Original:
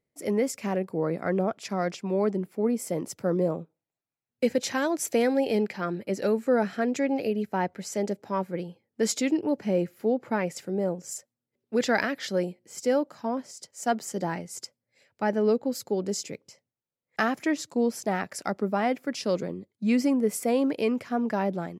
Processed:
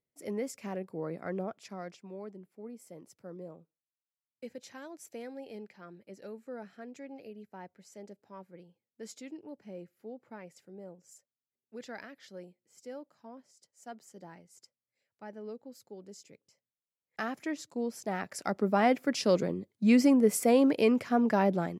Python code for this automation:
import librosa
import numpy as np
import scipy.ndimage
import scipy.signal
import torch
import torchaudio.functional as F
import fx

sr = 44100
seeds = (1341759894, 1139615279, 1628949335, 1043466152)

y = fx.gain(x, sr, db=fx.line((1.4, -9.5), (2.33, -19.5), (16.16, -19.5), (17.33, -9.0), (17.9, -9.0), (18.84, 1.0)))